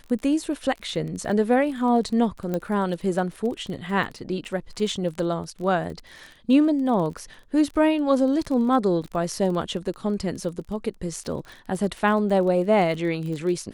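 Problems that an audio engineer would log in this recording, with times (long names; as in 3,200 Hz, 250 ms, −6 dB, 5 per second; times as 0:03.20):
surface crackle 25 per second −31 dBFS
0:02.54: click −15 dBFS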